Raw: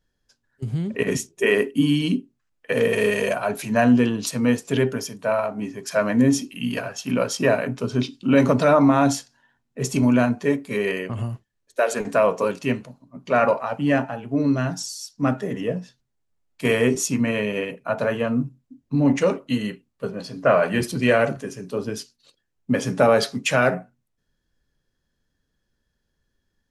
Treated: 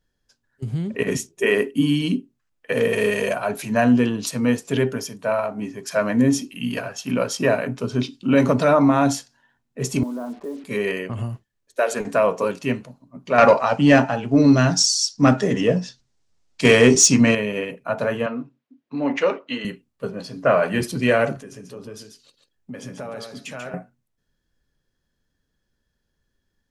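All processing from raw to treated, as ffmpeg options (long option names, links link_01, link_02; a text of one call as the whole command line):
ffmpeg -i in.wav -filter_complex "[0:a]asettb=1/sr,asplit=3[link_01][link_02][link_03];[link_01]atrim=end=10.034[link_04];[link_02]atrim=start=10.03:end=10.64,asetpts=PTS-STARTPTS,afade=type=in:duration=0.004:curve=qsin,afade=type=out:start_time=0.606:duration=0.004:curve=qsin,asuperpass=centerf=530:order=8:qfactor=0.52,acompressor=threshold=-30dB:ratio=3:attack=3.2:release=140:knee=1:detection=peak,acrusher=bits=7:mix=0:aa=0.5[link_05];[link_03]atrim=start=10.636[link_06];[link_04][link_05]acrossfade=duration=0.004:curve1=hsin:curve2=qsin[link_07];[link_07][link_06]acrossfade=duration=0.004:curve1=qsin:curve2=hsin,asettb=1/sr,asplit=3[link_08][link_09][link_10];[link_08]atrim=end=13.384[link_11];[link_09]atrim=start=13.38:end=17.35,asetpts=PTS-STARTPTS,afade=type=in:duration=0.004:curve=qsin,afade=type=out:start_time=3.966:duration=0.004:curve=qsin,lowpass=frequency=9000:width=0.5412,lowpass=frequency=9000:width=1.3066,equalizer=frequency=5300:width_type=o:width=1.2:gain=8.5,acontrast=82[link_12];[link_10]atrim=start=17.346[link_13];[link_11][link_12]acrossfade=duration=0.004:curve1=hsin:curve2=qsin[link_14];[link_14][link_13]acrossfade=duration=0.004:curve1=qsin:curve2=hsin,asettb=1/sr,asplit=3[link_15][link_16][link_17];[link_15]atrim=end=18.264[link_18];[link_16]atrim=start=18.26:end=19.65,asetpts=PTS-STARTPTS,afade=type=in:duration=0.004:curve=qsin,afade=type=out:start_time=1.386:duration=0.004:curve=qsin,highpass=350,lowpass=3700,equalizer=frequency=2500:width_type=o:width=2.9:gain=4.5[link_19];[link_17]atrim=start=19.646[link_20];[link_18][link_19]acrossfade=duration=0.004:curve1=hsin:curve2=qsin[link_21];[link_21][link_20]acrossfade=duration=0.004:curve1=qsin:curve2=hsin,asettb=1/sr,asplit=3[link_22][link_23][link_24];[link_22]atrim=end=21.384[link_25];[link_23]atrim=start=21.38:end=23.74,asetpts=PTS-STARTPTS,afade=type=in:duration=0.004:curve=qsin,afade=type=out:start_time=2.356:duration=0.004:curve=qsin,acompressor=threshold=-39dB:ratio=2.5:attack=3.2:release=140:knee=1:detection=peak,aecho=1:1:140:0.473,atrim=end_sample=104076[link_26];[link_24]atrim=start=23.736[link_27];[link_25][link_26]acrossfade=duration=0.004:curve1=hsin:curve2=qsin[link_28];[link_28][link_27]acrossfade=duration=0.004:curve1=qsin:curve2=hsin" out.wav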